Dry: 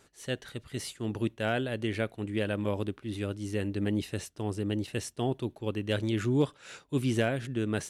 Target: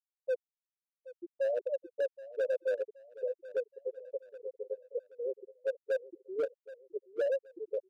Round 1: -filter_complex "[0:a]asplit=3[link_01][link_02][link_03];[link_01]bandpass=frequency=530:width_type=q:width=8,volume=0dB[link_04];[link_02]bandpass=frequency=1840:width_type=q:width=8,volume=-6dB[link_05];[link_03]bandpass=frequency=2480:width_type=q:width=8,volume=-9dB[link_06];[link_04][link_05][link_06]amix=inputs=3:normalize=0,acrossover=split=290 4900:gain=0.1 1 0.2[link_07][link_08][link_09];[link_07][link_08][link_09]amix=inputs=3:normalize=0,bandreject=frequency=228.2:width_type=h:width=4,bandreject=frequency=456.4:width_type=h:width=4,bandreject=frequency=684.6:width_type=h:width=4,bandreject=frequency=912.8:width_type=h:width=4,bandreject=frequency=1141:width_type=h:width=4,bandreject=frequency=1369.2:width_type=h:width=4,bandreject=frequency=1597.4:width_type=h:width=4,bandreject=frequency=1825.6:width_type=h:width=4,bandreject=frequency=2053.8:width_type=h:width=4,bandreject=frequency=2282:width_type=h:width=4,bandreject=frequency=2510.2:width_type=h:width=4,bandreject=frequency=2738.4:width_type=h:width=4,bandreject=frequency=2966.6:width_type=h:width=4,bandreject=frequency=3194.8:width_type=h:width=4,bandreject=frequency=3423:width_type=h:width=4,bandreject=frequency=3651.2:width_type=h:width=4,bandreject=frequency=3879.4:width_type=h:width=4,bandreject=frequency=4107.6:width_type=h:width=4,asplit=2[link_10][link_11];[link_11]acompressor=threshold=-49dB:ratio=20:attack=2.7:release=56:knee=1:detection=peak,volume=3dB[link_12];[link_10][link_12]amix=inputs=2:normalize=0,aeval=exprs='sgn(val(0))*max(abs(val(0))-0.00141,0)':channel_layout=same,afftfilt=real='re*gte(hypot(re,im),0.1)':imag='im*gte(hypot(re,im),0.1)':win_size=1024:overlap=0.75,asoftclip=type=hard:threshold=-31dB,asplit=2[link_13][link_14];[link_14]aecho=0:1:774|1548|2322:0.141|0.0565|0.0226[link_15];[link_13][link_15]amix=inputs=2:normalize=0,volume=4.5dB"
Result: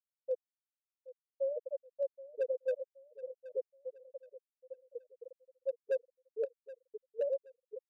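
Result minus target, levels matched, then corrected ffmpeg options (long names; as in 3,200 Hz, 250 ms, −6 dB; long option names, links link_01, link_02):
downward compressor: peak gain reduction +10.5 dB
-filter_complex "[0:a]asplit=3[link_01][link_02][link_03];[link_01]bandpass=frequency=530:width_type=q:width=8,volume=0dB[link_04];[link_02]bandpass=frequency=1840:width_type=q:width=8,volume=-6dB[link_05];[link_03]bandpass=frequency=2480:width_type=q:width=8,volume=-9dB[link_06];[link_04][link_05][link_06]amix=inputs=3:normalize=0,acrossover=split=290 4900:gain=0.1 1 0.2[link_07][link_08][link_09];[link_07][link_08][link_09]amix=inputs=3:normalize=0,bandreject=frequency=228.2:width_type=h:width=4,bandreject=frequency=456.4:width_type=h:width=4,bandreject=frequency=684.6:width_type=h:width=4,bandreject=frequency=912.8:width_type=h:width=4,bandreject=frequency=1141:width_type=h:width=4,bandreject=frequency=1369.2:width_type=h:width=4,bandreject=frequency=1597.4:width_type=h:width=4,bandreject=frequency=1825.6:width_type=h:width=4,bandreject=frequency=2053.8:width_type=h:width=4,bandreject=frequency=2282:width_type=h:width=4,bandreject=frequency=2510.2:width_type=h:width=4,bandreject=frequency=2738.4:width_type=h:width=4,bandreject=frequency=2966.6:width_type=h:width=4,bandreject=frequency=3194.8:width_type=h:width=4,bandreject=frequency=3423:width_type=h:width=4,bandreject=frequency=3651.2:width_type=h:width=4,bandreject=frequency=3879.4:width_type=h:width=4,bandreject=frequency=4107.6:width_type=h:width=4,asplit=2[link_10][link_11];[link_11]acompressor=threshold=-38dB:ratio=20:attack=2.7:release=56:knee=1:detection=peak,volume=3dB[link_12];[link_10][link_12]amix=inputs=2:normalize=0,aeval=exprs='sgn(val(0))*max(abs(val(0))-0.00141,0)':channel_layout=same,afftfilt=real='re*gte(hypot(re,im),0.1)':imag='im*gte(hypot(re,im),0.1)':win_size=1024:overlap=0.75,asoftclip=type=hard:threshold=-31dB,asplit=2[link_13][link_14];[link_14]aecho=0:1:774|1548|2322:0.141|0.0565|0.0226[link_15];[link_13][link_15]amix=inputs=2:normalize=0,volume=4.5dB"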